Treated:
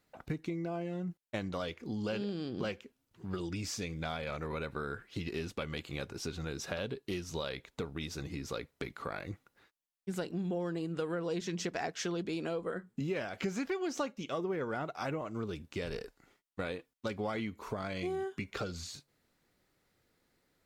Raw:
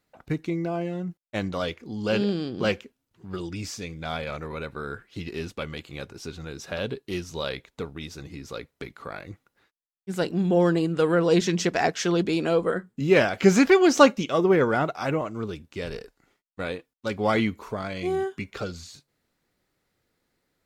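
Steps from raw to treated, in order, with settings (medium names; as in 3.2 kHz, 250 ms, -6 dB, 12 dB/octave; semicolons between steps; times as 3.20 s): compression 6:1, threshold -34 dBFS, peak gain reduction 22 dB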